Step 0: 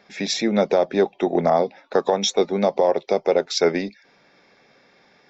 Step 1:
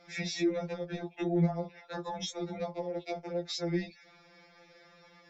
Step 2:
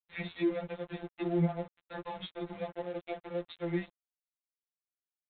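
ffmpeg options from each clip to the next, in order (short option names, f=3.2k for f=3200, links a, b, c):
-filter_complex "[0:a]alimiter=limit=-17dB:level=0:latency=1:release=52,acrossover=split=290[a][b];[b]acompressor=threshold=-34dB:ratio=3[c];[a][c]amix=inputs=2:normalize=0,afftfilt=real='re*2.83*eq(mod(b,8),0)':imag='im*2.83*eq(mod(b,8),0)':win_size=2048:overlap=0.75"
-af "highpass=120,aresample=8000,aeval=exprs='sgn(val(0))*max(abs(val(0))-0.00531,0)':c=same,aresample=44100"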